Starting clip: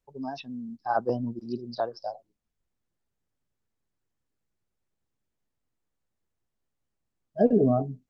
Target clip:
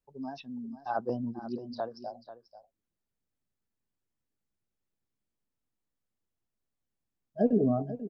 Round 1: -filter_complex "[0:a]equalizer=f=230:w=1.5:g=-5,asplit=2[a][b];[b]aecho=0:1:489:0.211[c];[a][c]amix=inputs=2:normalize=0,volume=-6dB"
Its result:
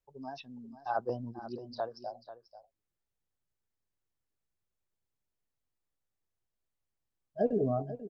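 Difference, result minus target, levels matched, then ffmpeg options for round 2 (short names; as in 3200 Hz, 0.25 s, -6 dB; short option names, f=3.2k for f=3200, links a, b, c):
250 Hz band -4.0 dB
-filter_complex "[0:a]equalizer=f=230:w=1.5:g=3.5,asplit=2[a][b];[b]aecho=0:1:489:0.211[c];[a][c]amix=inputs=2:normalize=0,volume=-6dB"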